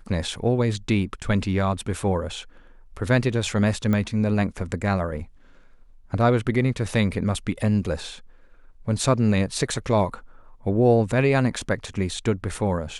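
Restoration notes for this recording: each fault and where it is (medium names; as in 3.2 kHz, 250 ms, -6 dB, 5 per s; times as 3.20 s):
3.93 s: pop -14 dBFS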